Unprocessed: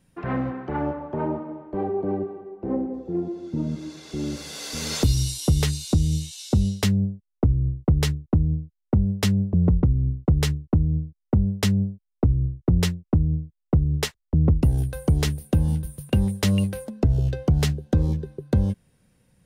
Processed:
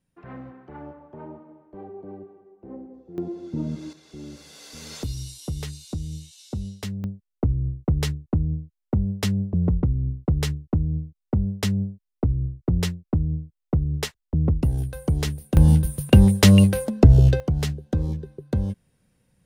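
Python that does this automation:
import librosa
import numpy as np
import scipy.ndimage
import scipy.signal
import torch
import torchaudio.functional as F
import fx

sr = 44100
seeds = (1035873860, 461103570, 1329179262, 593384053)

y = fx.gain(x, sr, db=fx.steps((0.0, -13.5), (3.18, -1.5), (3.93, -10.5), (7.04, -2.5), (15.57, 8.0), (17.4, -3.5)))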